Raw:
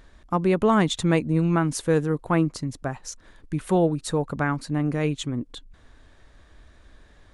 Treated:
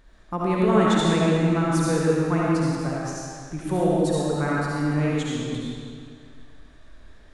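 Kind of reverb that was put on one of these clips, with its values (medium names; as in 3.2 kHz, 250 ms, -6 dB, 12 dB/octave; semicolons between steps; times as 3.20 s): algorithmic reverb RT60 2.2 s, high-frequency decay 0.9×, pre-delay 30 ms, DRR -6 dB; trim -5.5 dB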